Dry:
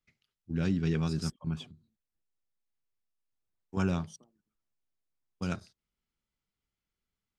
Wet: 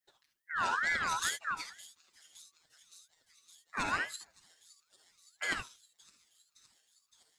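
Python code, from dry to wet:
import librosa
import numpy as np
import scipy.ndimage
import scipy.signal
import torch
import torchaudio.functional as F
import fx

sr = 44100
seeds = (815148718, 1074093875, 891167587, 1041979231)

p1 = fx.high_shelf(x, sr, hz=4600.0, db=11.5)
p2 = p1 + 0.89 * np.pad(p1, (int(6.4 * sr / 1000.0), 0))[:len(p1)]
p3 = fx.hpss(p2, sr, part='percussive', gain_db=6)
p4 = p3 + fx.echo_wet_highpass(p3, sr, ms=565, feedback_pct=77, hz=4000.0, wet_db=-16, dry=0)
p5 = fx.rev_gated(p4, sr, seeds[0], gate_ms=90, shape='rising', drr_db=4.0)
p6 = fx.ring_lfo(p5, sr, carrier_hz=1500.0, swing_pct=25, hz=2.2)
y = p6 * 10.0 ** (-6.0 / 20.0)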